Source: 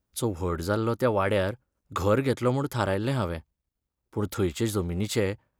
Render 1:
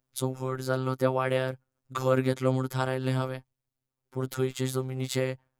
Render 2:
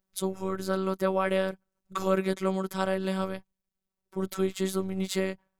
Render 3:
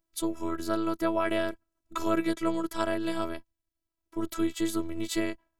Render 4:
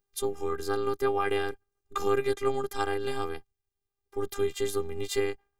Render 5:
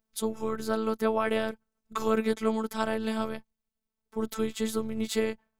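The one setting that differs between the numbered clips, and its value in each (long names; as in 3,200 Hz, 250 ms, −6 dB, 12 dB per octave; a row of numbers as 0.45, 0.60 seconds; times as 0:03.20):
phases set to zero, frequency: 130, 190, 330, 400, 220 Hertz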